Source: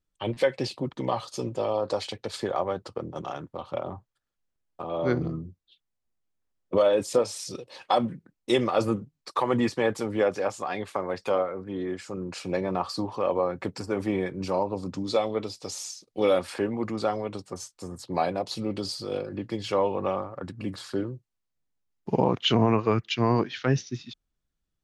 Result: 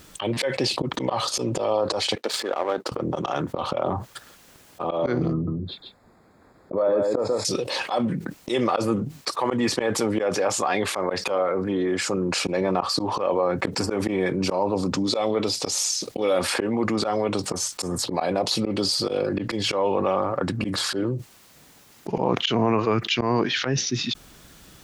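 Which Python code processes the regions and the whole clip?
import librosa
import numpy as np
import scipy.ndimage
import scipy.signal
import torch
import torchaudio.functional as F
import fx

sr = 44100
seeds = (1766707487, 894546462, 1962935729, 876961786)

y = fx.chain(x, sr, fx.highpass(hz=240.0, slope=24),
    fx.power_curve(exponent=1.4), at=(2.15, 2.92))
y = fx.chain(y, sr, fx.moving_average(points=15),
    fx.echo_single(ms=141, db=-7.5), at=(5.33, 7.45))
y = fx.highpass(y, sr, hz=180.0, slope=6)
y = fx.auto_swell(y, sr, attack_ms=145.0)
y = fx.env_flatten(y, sr, amount_pct=70)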